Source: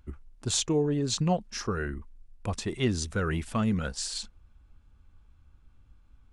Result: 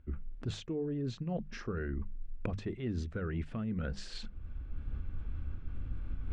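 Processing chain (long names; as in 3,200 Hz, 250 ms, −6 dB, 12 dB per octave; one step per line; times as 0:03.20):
camcorder AGC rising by 39 dB per second
low-pass filter 1,800 Hz 12 dB per octave
parametric band 930 Hz −11 dB 1.1 octaves
mains-hum notches 50/100/150/200 Hz
reversed playback
downward compressor 6 to 1, threshold −36 dBFS, peak gain reduction 16 dB
reversed playback
level +2.5 dB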